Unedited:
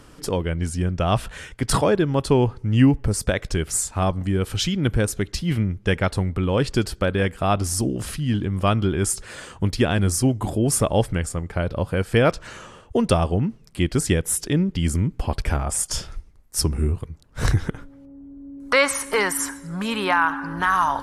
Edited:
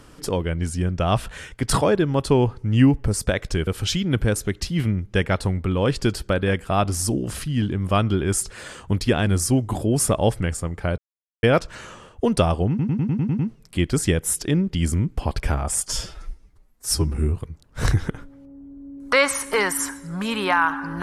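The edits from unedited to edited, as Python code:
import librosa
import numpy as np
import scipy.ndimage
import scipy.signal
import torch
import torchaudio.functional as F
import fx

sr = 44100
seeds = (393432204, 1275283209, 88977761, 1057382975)

y = fx.edit(x, sr, fx.cut(start_s=3.67, length_s=0.72),
    fx.silence(start_s=11.7, length_s=0.45),
    fx.stutter(start_s=13.41, slice_s=0.1, count=8),
    fx.stretch_span(start_s=15.9, length_s=0.84, factor=1.5), tone=tone)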